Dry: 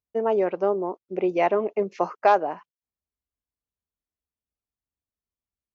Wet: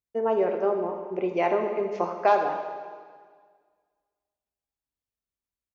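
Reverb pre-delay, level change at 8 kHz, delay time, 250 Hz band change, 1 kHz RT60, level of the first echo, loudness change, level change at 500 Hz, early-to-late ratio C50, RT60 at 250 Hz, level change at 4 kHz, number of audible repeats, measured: 4 ms, n/a, 81 ms, -2.5 dB, 1.7 s, -13.5 dB, -2.0 dB, -1.5 dB, 5.5 dB, 1.7 s, -1.5 dB, 1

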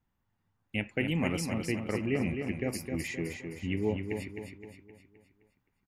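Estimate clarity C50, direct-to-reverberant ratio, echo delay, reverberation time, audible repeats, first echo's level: none, none, 0.26 s, none, 5, -6.0 dB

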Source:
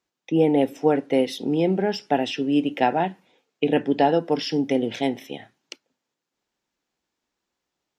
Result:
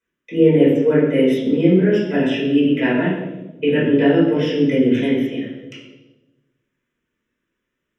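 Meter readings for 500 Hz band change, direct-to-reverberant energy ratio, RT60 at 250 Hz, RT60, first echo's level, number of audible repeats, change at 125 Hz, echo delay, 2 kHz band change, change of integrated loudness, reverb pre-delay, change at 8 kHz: +5.5 dB, -9.5 dB, 1.5 s, 1.1 s, none, none, +9.5 dB, none, +7.5 dB, +6.0 dB, 4 ms, n/a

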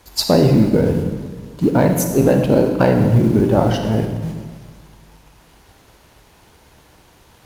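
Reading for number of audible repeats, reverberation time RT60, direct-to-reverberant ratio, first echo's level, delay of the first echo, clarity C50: none, 1.5 s, 4.0 dB, none, none, 5.5 dB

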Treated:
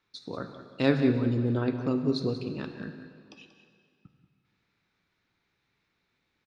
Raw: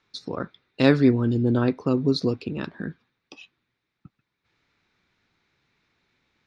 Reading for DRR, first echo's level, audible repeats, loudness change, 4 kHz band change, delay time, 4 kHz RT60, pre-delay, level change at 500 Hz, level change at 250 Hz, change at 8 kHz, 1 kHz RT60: 6.5 dB, -12.0 dB, 1, -5.0 dB, -6.0 dB, 0.185 s, 2.0 s, 8 ms, -5.5 dB, -5.5 dB, n/a, 2.3 s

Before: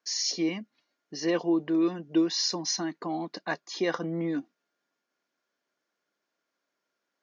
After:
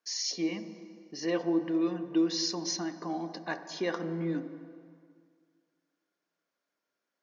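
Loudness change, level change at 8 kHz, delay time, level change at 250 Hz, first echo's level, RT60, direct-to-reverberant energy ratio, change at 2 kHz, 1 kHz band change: -3.0 dB, n/a, none, -2.5 dB, none, 2.0 s, 9.0 dB, -3.5 dB, -3.0 dB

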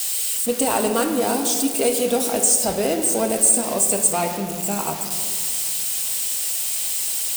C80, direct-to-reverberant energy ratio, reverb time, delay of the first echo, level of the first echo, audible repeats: 8.5 dB, 4.0 dB, 2.0 s, none, none, none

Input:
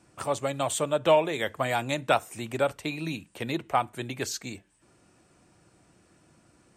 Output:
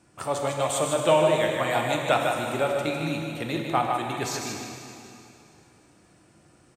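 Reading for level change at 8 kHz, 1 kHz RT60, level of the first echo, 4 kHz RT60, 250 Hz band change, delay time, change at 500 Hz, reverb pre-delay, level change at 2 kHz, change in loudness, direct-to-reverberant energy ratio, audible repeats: +3.0 dB, 2.8 s, -5.5 dB, 2.6 s, +3.5 dB, 0.153 s, +3.0 dB, 7 ms, +3.0 dB, +3.0 dB, 0.0 dB, 1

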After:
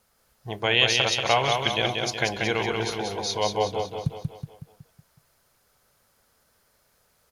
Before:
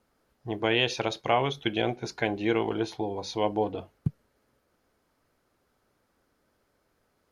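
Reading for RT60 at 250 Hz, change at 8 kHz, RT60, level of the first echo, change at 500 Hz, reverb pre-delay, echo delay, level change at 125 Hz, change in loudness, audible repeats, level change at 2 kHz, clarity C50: none, +13.0 dB, none, -4.0 dB, +2.0 dB, none, 0.185 s, +3.5 dB, +4.5 dB, 6, +7.0 dB, none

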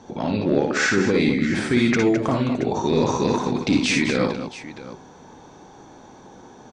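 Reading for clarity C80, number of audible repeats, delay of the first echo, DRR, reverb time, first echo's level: none, 3, 57 ms, none, none, -4.0 dB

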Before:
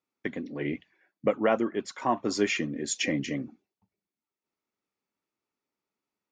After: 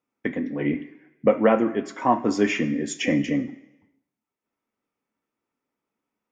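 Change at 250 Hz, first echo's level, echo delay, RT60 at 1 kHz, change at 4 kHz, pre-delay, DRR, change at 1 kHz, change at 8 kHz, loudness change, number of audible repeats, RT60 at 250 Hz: +7.5 dB, none, none, 1.0 s, -0.5 dB, 3 ms, 6.0 dB, +6.5 dB, -2.0 dB, +6.0 dB, none, 0.85 s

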